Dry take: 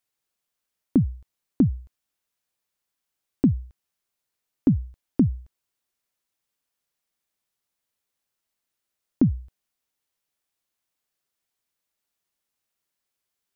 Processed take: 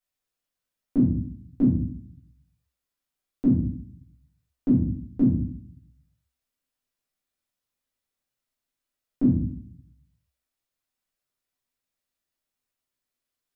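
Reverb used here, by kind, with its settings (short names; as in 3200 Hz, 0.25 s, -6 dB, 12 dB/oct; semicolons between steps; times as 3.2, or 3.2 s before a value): shoebox room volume 67 m³, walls mixed, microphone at 1.9 m; gain -12 dB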